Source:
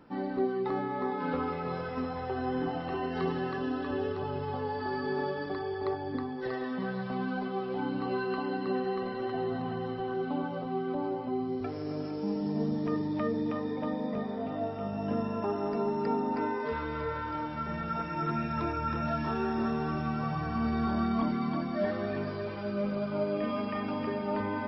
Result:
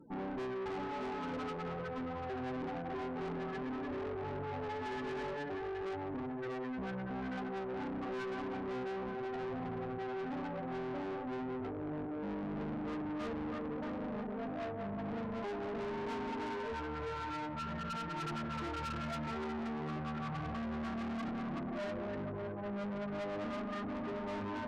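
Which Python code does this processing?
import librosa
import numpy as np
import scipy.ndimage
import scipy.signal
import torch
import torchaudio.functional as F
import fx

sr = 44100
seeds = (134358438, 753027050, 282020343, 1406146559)

y = fx.spec_topn(x, sr, count=16)
y = fx.tube_stage(y, sr, drive_db=40.0, bias=0.55)
y = y * librosa.db_to_amplitude(2.5)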